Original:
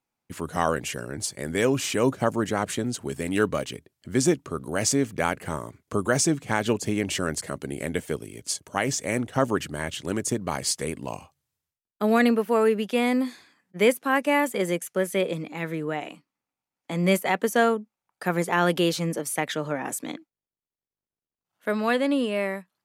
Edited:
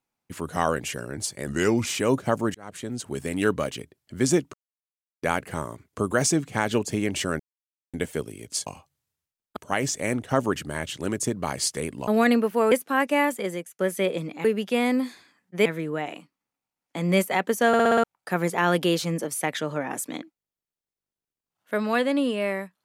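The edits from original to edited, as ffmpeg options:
-filter_complex "[0:a]asplit=21[s0][s1][s2][s3][s4][s5][s6][s7][s8][s9][s10][s11][s12][s13][s14][s15][s16][s17][s18][s19][s20];[s0]atrim=end=1.474[s21];[s1]atrim=start=1.47:end=1.81,asetpts=PTS-STARTPTS,asetrate=37926,aresample=44100[s22];[s2]atrim=start=1.806:end=2.49,asetpts=PTS-STARTPTS,afade=t=out:st=0.68:d=0.004:c=hsin[s23];[s3]atrim=start=2.49:end=4.48,asetpts=PTS-STARTPTS,afade=t=in:d=0.6,afade=t=out:st=1.986:d=0.004:c=hsin[s24];[s4]atrim=start=4.48:end=5.17,asetpts=PTS-STARTPTS,volume=0[s25];[s5]atrim=start=5.17:end=7.34,asetpts=PTS-STARTPTS,afade=t=in:d=0.004:c=hsin,afade=t=out:st=2.166:d=0.004:c=hsin[s26];[s6]atrim=start=7.34:end=7.88,asetpts=PTS-STARTPTS,volume=0[s27];[s7]atrim=start=7.88:end=8.612,asetpts=PTS-STARTPTS,afade=t=in:d=0.004:c=hsin[s28];[s8]atrim=start=11.118:end=12.022[s29];[s9]atrim=start=8.608:end=11.122[s30];[s10]atrim=start=12.018:end=12.662[s31];[s11]atrim=start=13.868:end=14.94,asetpts=PTS-STARTPTS,afade=t=out:st=0.522:d=0.55:silence=0.177828[s32];[s12]atrim=start=14.94:end=15.602,asetpts=PTS-STARTPTS,afade=t=in:d=0.004:c=hsin:silence=0.177828[s33];[s13]atrim=start=12.658:end=13.872[s34];[s14]atrim=start=15.598:end=17.682[s35];[s15]atrim=start=17.618:end=17.682[s36];[s16]atrim=start=17.618:end=17.682[s37];[s17]atrim=start=17.618:end=17.682[s38];[s18]atrim=start=17.618:end=17.682[s39];[s19]atrim=start=17.618:end=17.682[s40];[s20]atrim=start=17.978[s41];[s21][s22]acrossfade=d=0.004:c1=hsin:c2=hsin[s42];[s23][s24][s25][s26][s27][s28]concat=n=6:v=0:a=1[s43];[s42][s43]acrossfade=d=0.004:c1=hsin:c2=hsin[s44];[s44][s29]acrossfade=d=0.004:c1=hsin:c2=hsin[s45];[s45][s30]acrossfade=d=0.004:c1=hsin:c2=hsin[s46];[s46][s31]acrossfade=d=0.004:c1=hsin:c2=hsin[s47];[s32][s33]concat=n=2:v=0:a=1[s48];[s47][s48]acrossfade=d=0.004:c1=hsin:c2=hsin[s49];[s49][s34]acrossfade=d=0.004:c1=hsin:c2=hsin[s50];[s50][s35]acrossfade=d=0.004:c1=hsin:c2=hsin[s51];[s51][s36]acrossfade=d=0.004:c1=hsin:c2=hsin[s52];[s52][s37]acrossfade=d=0.004:c1=hsin:c2=hsin[s53];[s53][s38]acrossfade=d=0.004:c1=hsin:c2=hsin[s54];[s54][s39]acrossfade=d=0.004:c1=hsin:c2=hsin[s55];[s55][s40]acrossfade=d=0.004:c1=hsin:c2=hsin[s56];[s56][s41]acrossfade=d=0.004:c1=hsin:c2=hsin"

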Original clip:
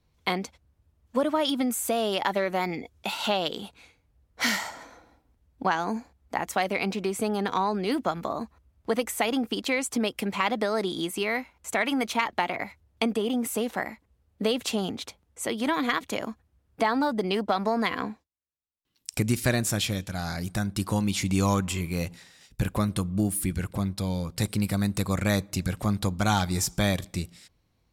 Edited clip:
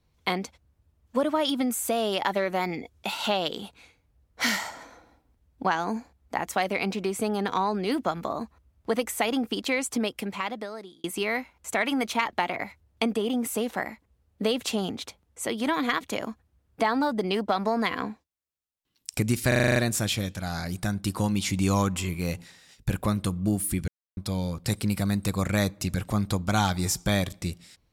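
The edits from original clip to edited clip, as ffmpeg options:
-filter_complex "[0:a]asplit=11[s0][s1][s2][s3][s4][s5][s6][s7][s8][s9][s10];[s0]atrim=end=11.04,asetpts=PTS-STARTPTS,afade=t=out:st=9.93:d=1.11[s11];[s1]atrim=start=11.04:end=19.522,asetpts=PTS-STARTPTS,afade=t=in:d=0.004:c=hsin[s12];[s2]atrim=start=19.478:end=19.522[s13];[s3]atrim=start=19.478:end=19.522[s14];[s4]atrim=start=19.478:end=19.522[s15];[s5]atrim=start=19.478:end=19.522[s16];[s6]atrim=start=19.478:end=19.522[s17];[s7]atrim=start=19.478:end=19.522[s18];[s8]atrim=start=19.478:end=23.6,asetpts=PTS-STARTPTS,afade=t=out:st=4.118:d=0.004:c=hsin[s19];[s9]atrim=start=23.6:end=23.89,asetpts=PTS-STARTPTS,volume=0[s20];[s10]atrim=start=23.89,asetpts=PTS-STARTPTS,afade=t=in:d=0.004:c=hsin[s21];[s11][s12]concat=n=2:v=0:a=1[s22];[s22][s13]acrossfade=d=0.004:c1=hsin:c2=hsin[s23];[s23][s14]acrossfade=d=0.004:c1=hsin:c2=hsin[s24];[s24][s15]acrossfade=d=0.004:c1=hsin:c2=hsin[s25];[s25][s16]acrossfade=d=0.004:c1=hsin:c2=hsin[s26];[s26][s17]acrossfade=d=0.004:c1=hsin:c2=hsin[s27];[s27][s18]acrossfade=d=0.004:c1=hsin:c2=hsin[s28];[s19][s20][s21]concat=n=3:v=0:a=1[s29];[s28][s29]acrossfade=d=0.004:c1=hsin:c2=hsin"

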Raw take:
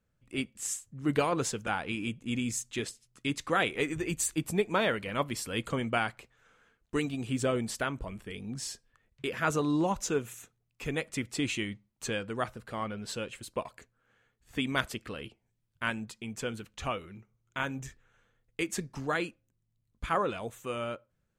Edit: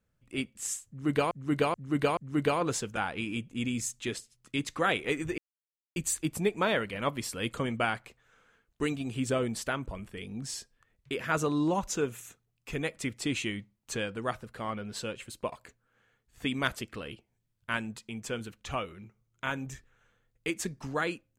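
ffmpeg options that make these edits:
-filter_complex "[0:a]asplit=5[s0][s1][s2][s3][s4];[s0]atrim=end=1.312[s5];[s1]atrim=start=0.878:end=1.312[s6];[s2]atrim=start=0.878:end=1.312[s7];[s3]atrim=start=0.878:end=4.09,asetpts=PTS-STARTPTS,afade=t=out:st=3.208:d=0.004:c=hsin,apad=pad_dur=0.58[s8];[s4]atrim=start=4.09,asetpts=PTS-STARTPTS,afade=t=in:d=0.004:c=hsin[s9];[s5][s6]acrossfade=d=0.004:c1=hsin:c2=hsin[s10];[s10][s7]acrossfade=d=0.004:c1=hsin:c2=hsin[s11];[s8][s9]concat=n=2:v=0:a=1[s12];[s11][s12]acrossfade=d=0.004:c1=hsin:c2=hsin"

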